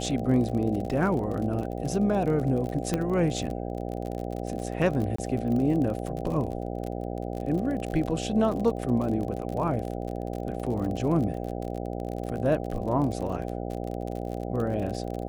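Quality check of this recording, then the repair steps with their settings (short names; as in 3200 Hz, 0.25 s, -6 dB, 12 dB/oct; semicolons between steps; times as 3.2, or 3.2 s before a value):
buzz 60 Hz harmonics 13 -33 dBFS
crackle 43/s -32 dBFS
2.94 pop -13 dBFS
5.16–5.18 gap 24 ms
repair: de-click; de-hum 60 Hz, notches 13; interpolate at 5.16, 24 ms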